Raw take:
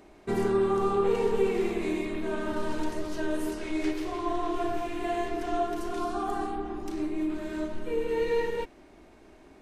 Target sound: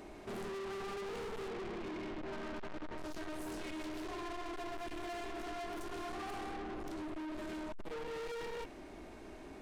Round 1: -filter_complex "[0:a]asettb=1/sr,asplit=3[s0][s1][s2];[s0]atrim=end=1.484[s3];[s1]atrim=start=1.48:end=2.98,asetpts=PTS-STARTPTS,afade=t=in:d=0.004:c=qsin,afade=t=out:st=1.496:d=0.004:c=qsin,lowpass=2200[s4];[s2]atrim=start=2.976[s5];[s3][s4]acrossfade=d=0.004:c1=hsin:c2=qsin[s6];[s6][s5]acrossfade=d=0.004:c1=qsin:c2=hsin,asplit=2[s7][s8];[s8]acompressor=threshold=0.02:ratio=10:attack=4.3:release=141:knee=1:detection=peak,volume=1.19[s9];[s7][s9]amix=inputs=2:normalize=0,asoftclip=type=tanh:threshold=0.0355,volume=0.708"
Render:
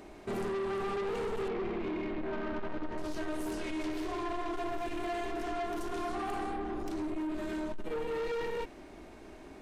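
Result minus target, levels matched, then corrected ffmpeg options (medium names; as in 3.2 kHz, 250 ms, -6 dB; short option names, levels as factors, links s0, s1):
saturation: distortion -4 dB
-filter_complex "[0:a]asettb=1/sr,asplit=3[s0][s1][s2];[s0]atrim=end=1.484[s3];[s1]atrim=start=1.48:end=2.98,asetpts=PTS-STARTPTS,afade=t=in:d=0.004:c=qsin,afade=t=out:st=1.496:d=0.004:c=qsin,lowpass=2200[s4];[s2]atrim=start=2.976[s5];[s3][s4]acrossfade=d=0.004:c1=hsin:c2=qsin[s6];[s6][s5]acrossfade=d=0.004:c1=qsin:c2=hsin,asplit=2[s7][s8];[s8]acompressor=threshold=0.02:ratio=10:attack=4.3:release=141:knee=1:detection=peak,volume=1.19[s9];[s7][s9]amix=inputs=2:normalize=0,asoftclip=type=tanh:threshold=0.0126,volume=0.708"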